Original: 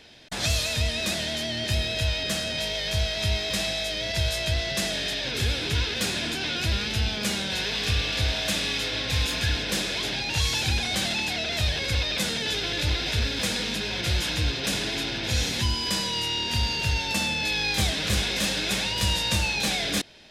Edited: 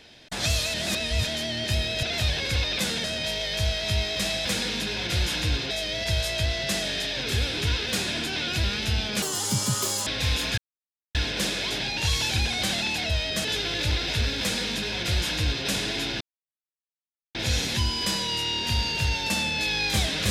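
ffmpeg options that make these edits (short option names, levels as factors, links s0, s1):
-filter_complex "[0:a]asplit=13[s0][s1][s2][s3][s4][s5][s6][s7][s8][s9][s10][s11][s12];[s0]atrim=end=0.742[s13];[s1]atrim=start=0.738:end=1.272,asetpts=PTS-STARTPTS,areverse[s14];[s2]atrim=start=1.268:end=2.032[s15];[s3]atrim=start=11.418:end=12.432[s16];[s4]atrim=start=2.378:end=3.792[s17];[s5]atrim=start=13.388:end=14.652[s18];[s6]atrim=start=3.788:end=7.304[s19];[s7]atrim=start=7.3:end=8.96,asetpts=PTS-STARTPTS,asetrate=86436,aresample=44100[s20];[s8]atrim=start=8.956:end=9.47,asetpts=PTS-STARTPTS,afade=t=out:st=0.51:d=0.004:c=hsin,apad=pad_dur=0.57[s21];[s9]atrim=start=9.47:end=11.422,asetpts=PTS-STARTPTS,afade=t=in:d=0.004:c=hsin[s22];[s10]atrim=start=2.028:end=2.382[s23];[s11]atrim=start=12.428:end=15.19,asetpts=PTS-STARTPTS,afade=t=out:st=2.758:d=0.004:c=hsin,apad=pad_dur=1.14[s24];[s12]atrim=start=15.19,asetpts=PTS-STARTPTS,afade=t=in:d=0.004:c=hsin[s25];[s13][s14]acrossfade=d=0.004:c1=hsin:c2=hsin[s26];[s26][s15]acrossfade=d=0.004:c1=hsin:c2=hsin[s27];[s27][s16]acrossfade=d=0.004:c1=hsin:c2=hsin[s28];[s28][s17]acrossfade=d=0.004:c1=hsin:c2=hsin[s29];[s29][s18]acrossfade=d=0.004:c1=hsin:c2=hsin[s30];[s30][s19]acrossfade=d=0.004:c1=hsin:c2=hsin[s31];[s31][s20]acrossfade=d=0.004:c1=hsin:c2=hsin[s32];[s21][s22]concat=n=2:v=0:a=1[s33];[s32][s33]acrossfade=d=0.004:c1=hsin:c2=hsin[s34];[s34][s23]acrossfade=d=0.004:c1=hsin:c2=hsin[s35];[s24][s25]concat=n=2:v=0:a=1[s36];[s35][s36]acrossfade=d=0.004:c1=hsin:c2=hsin"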